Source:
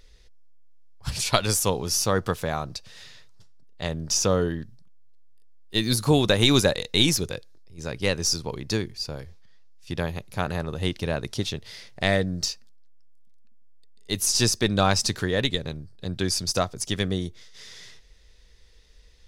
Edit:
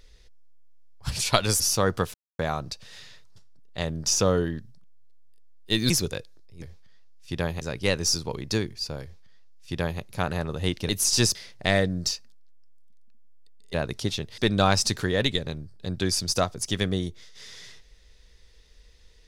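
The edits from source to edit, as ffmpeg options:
-filter_complex "[0:a]asplit=10[s0][s1][s2][s3][s4][s5][s6][s7][s8][s9];[s0]atrim=end=1.602[s10];[s1]atrim=start=1.888:end=2.43,asetpts=PTS-STARTPTS,afade=t=out:st=0.538:d=0.004:c=hsin,apad=pad_dur=0.25[s11];[s2]atrim=start=2.43:end=5.942,asetpts=PTS-STARTPTS,afade=t=in:d=0.004:c=hsin[s12];[s3]atrim=start=7.078:end=7.802[s13];[s4]atrim=start=9.208:end=10.202[s14];[s5]atrim=start=7.798:end=11.082[s15];[s6]atrim=start=14.108:end=14.572[s16];[s7]atrim=start=11.718:end=14.112[s17];[s8]atrim=start=11.078:end=11.722[s18];[s9]atrim=start=14.568[s19];[s11][s12]concat=n=2:v=0:a=1[s20];[s10][s20]acrossfade=d=0.004:c1=hsin:c2=hsin[s21];[s21][s13]acrossfade=d=0.004:c1=hsin:c2=hsin[s22];[s22][s14]acrossfade=d=0.004:c1=hsin:c2=hsin[s23];[s23][s15]acrossfade=d=0.004:c1=hsin:c2=hsin[s24];[s24][s16]acrossfade=d=0.004:c1=hsin:c2=hsin[s25];[s25][s17]acrossfade=d=0.004:c1=hsin:c2=hsin[s26];[s26][s18]acrossfade=d=0.004:c1=hsin:c2=hsin[s27];[s27][s19]acrossfade=d=0.004:c1=hsin:c2=hsin"

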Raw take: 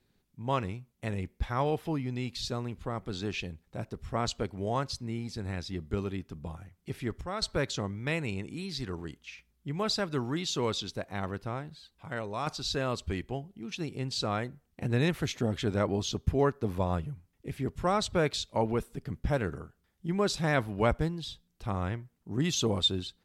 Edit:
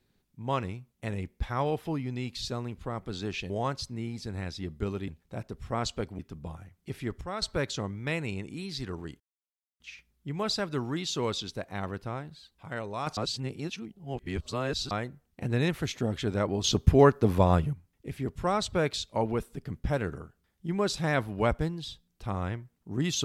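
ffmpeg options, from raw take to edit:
-filter_complex "[0:a]asplit=9[s0][s1][s2][s3][s4][s5][s6][s7][s8];[s0]atrim=end=3.502[s9];[s1]atrim=start=4.608:end=6.192[s10];[s2]atrim=start=3.498:end=4.612[s11];[s3]atrim=start=6.188:end=9.2,asetpts=PTS-STARTPTS,afade=t=out:st=3.008:d=0.004:c=hsin,apad=pad_dur=0.6[s12];[s4]atrim=start=9.2:end=12.572,asetpts=PTS-STARTPTS,afade=t=in:d=0.004:c=hsin[s13];[s5]atrim=start=12.568:end=14.312,asetpts=PTS-STARTPTS,areverse[s14];[s6]atrim=start=14.308:end=16.042[s15];[s7]atrim=start=16.038:end=17.132,asetpts=PTS-STARTPTS,volume=2.37[s16];[s8]atrim=start=17.128[s17];[s9][s10]acrossfade=d=0.004:c1=hsin:c2=hsin[s18];[s18][s11]acrossfade=d=0.004:c1=hsin:c2=hsin[s19];[s12][s13]concat=n=2:v=0:a=1[s20];[s19][s20]acrossfade=d=0.004:c1=hsin:c2=hsin[s21];[s21][s14]acrossfade=d=0.004:c1=hsin:c2=hsin[s22];[s22][s15]acrossfade=d=0.004:c1=hsin:c2=hsin[s23];[s23][s16]acrossfade=d=0.004:c1=hsin:c2=hsin[s24];[s24][s17]acrossfade=d=0.004:c1=hsin:c2=hsin"

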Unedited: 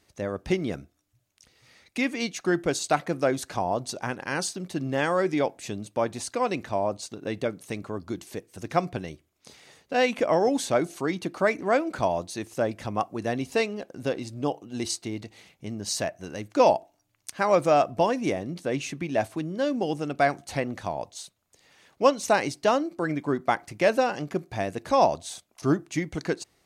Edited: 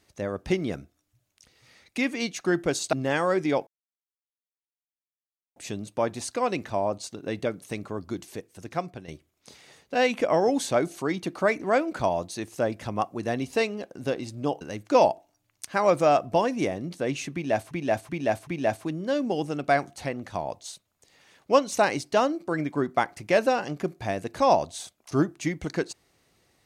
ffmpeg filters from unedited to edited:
-filter_complex "[0:a]asplit=10[s0][s1][s2][s3][s4][s5][s6][s7][s8][s9];[s0]atrim=end=2.932[s10];[s1]atrim=start=4.808:end=5.55,asetpts=PTS-STARTPTS,afade=t=out:st=0.738:d=0.004:c=hsin,apad=pad_dur=1.89[s11];[s2]atrim=start=5.55:end=9.07,asetpts=PTS-STARTPTS,afade=t=in:d=0.004:c=hsin,afade=t=out:st=2.63:d=0.89:silence=0.298538[s12];[s3]atrim=start=9.07:end=14.602,asetpts=PTS-STARTPTS,afade=t=in:d=0.004:c=hsin:silence=0.298538[s13];[s4]atrim=start=16.258:end=19.362[s14];[s5]atrim=start=18.978:end=19.362[s15];[s6]atrim=start=18.978:end=19.362[s16];[s7]atrim=start=18.978:end=20.472[s17];[s8]atrim=start=20.468:end=20.852,asetpts=PTS-STARTPTS,volume=0.708[s18];[s9]atrim=start=20.848[s19];[s11][s12][s13]concat=n=3:v=0:a=1[s20];[s10][s20]acrossfade=d=0.004:c1=hsin:c2=hsin[s21];[s21][s14]acrossfade=d=0.004:c1=hsin:c2=hsin[s22];[s22][s15]acrossfade=d=0.004:c1=hsin:c2=hsin[s23];[s23][s16]acrossfade=d=0.004:c1=hsin:c2=hsin[s24];[s24][s17]acrossfade=d=0.004:c1=hsin:c2=hsin[s25];[s25][s18]acrossfade=d=0.004:c1=hsin:c2=hsin[s26];[s26][s19]acrossfade=d=0.004:c1=hsin:c2=hsin"

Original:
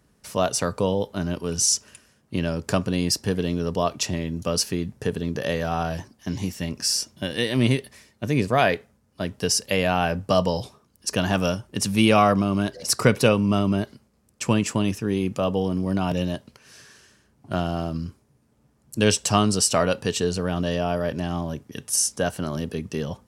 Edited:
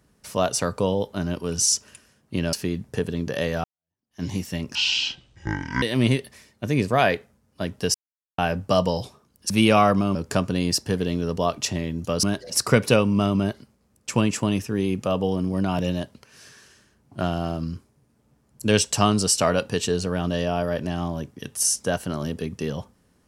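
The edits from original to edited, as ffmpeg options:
-filter_complex "[0:a]asplit=10[s0][s1][s2][s3][s4][s5][s6][s7][s8][s9];[s0]atrim=end=2.532[s10];[s1]atrim=start=4.608:end=5.72,asetpts=PTS-STARTPTS,afade=t=out:st=1.108:d=0.004:c=hsin[s11];[s2]atrim=start=5.72:end=6.834,asetpts=PTS-STARTPTS,afade=t=in:d=0.59:c=exp[s12];[s3]atrim=start=6.83:end=7.42,asetpts=PTS-STARTPTS,asetrate=24255,aresample=44100,atrim=end_sample=47307,asetpts=PTS-STARTPTS[s13];[s4]atrim=start=7.416:end=9.54,asetpts=PTS-STARTPTS,afade=t=out:st=2.12:d=0.004:c=hsin[s14];[s5]atrim=start=9.54:end=9.98,asetpts=PTS-STARTPTS,volume=0[s15];[s6]atrim=start=9.98:end=11.102,asetpts=PTS-STARTPTS,afade=t=in:d=0.004:c=hsin[s16];[s7]atrim=start=11.908:end=12.562[s17];[s8]atrim=start=2.528:end=4.612[s18];[s9]atrim=start=12.558[s19];[s11][s12]concat=n=2:v=0:a=1[s20];[s10][s20]acrossfade=d=0.004:c1=hsin:c2=hsin[s21];[s21][s13]acrossfade=d=0.004:c1=hsin:c2=hsin[s22];[s14][s15][s16]concat=n=3:v=0:a=1[s23];[s22][s23]acrossfade=d=0.004:c1=hsin:c2=hsin[s24];[s24][s17]acrossfade=d=0.004:c1=hsin:c2=hsin[s25];[s25][s18]acrossfade=d=0.004:c1=hsin:c2=hsin[s26];[s26][s19]acrossfade=d=0.004:c1=hsin:c2=hsin"

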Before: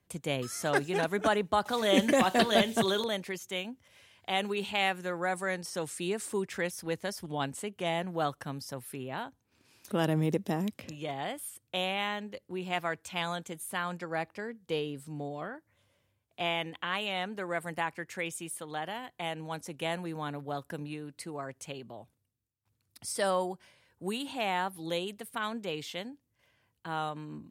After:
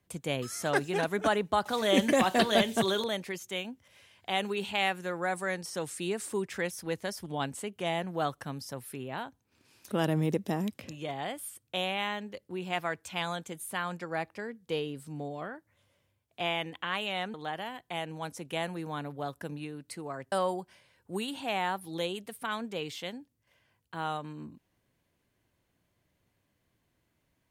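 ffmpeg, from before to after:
-filter_complex "[0:a]asplit=3[s0][s1][s2];[s0]atrim=end=17.342[s3];[s1]atrim=start=18.628:end=21.612[s4];[s2]atrim=start=23.238[s5];[s3][s4]acrossfade=d=0.004:c1=hsin:c2=hsin[s6];[s6][s5]acrossfade=d=0.004:c1=hsin:c2=hsin"

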